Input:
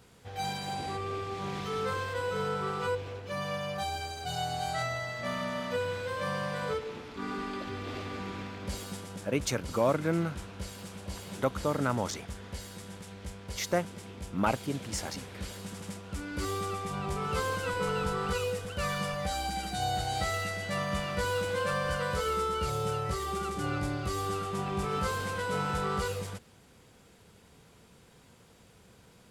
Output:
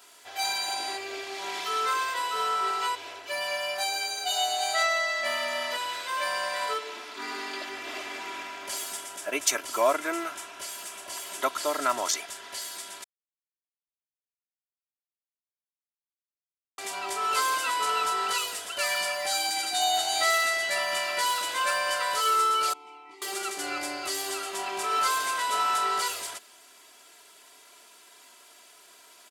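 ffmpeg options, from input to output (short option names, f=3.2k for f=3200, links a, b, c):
-filter_complex "[0:a]asettb=1/sr,asplit=3[a][b][c];[a]atrim=end=7.654[d];[b]atrim=start=7.65:end=11.4,asetpts=PTS-STARTPTS,afade=t=in:d=0.004:c=qsin,afade=t=out:st=3.746:d=0.004:c=qsin,equalizer=f=4.3k:w=2.9:g=-5.5[e];[c]atrim=start=11.396[f];[d][e]acrossfade=d=0.004:c1=hsin:c2=qsin[g];[g][f]acrossfade=d=0.004:c1=qsin:c2=hsin,asettb=1/sr,asplit=3[h][i][j];[h]atrim=end=22.734[k];[i]atrim=start=22.73:end=23.22,asetpts=PTS-STARTPTS,afade=t=in:d=0.004:c=qsin,afade=t=out:st=0.486:d=0.004:c=qsin,asplit=3[l][m][n];[l]bandpass=f=300:t=q:w=8,volume=0dB[o];[m]bandpass=f=870:t=q:w=8,volume=-6dB[p];[n]bandpass=f=2.24k:t=q:w=8,volume=-9dB[q];[o][p][q]amix=inputs=3:normalize=0[r];[j]atrim=start=23.216[s];[k][r]acrossfade=d=0.004:c1=hsin:c2=qsin[t];[t][s]acrossfade=d=0.004:c1=qsin:c2=hsin,asplit=3[u][v][w];[u]atrim=end=13.04,asetpts=PTS-STARTPTS,afade=t=out:st=13.036:d=0.004:c=hsin[x];[v]atrim=start=13.04:end=16.78,asetpts=PTS-STARTPTS,volume=0[y];[w]atrim=start=16.78,asetpts=PTS-STARTPTS,afade=t=in:d=0.004:c=hsin[z];[x][y][z]concat=n=3:v=0:a=1,highpass=650,highshelf=f=3.8k:g=6.5,aecho=1:1:3:0.88,volume=4dB"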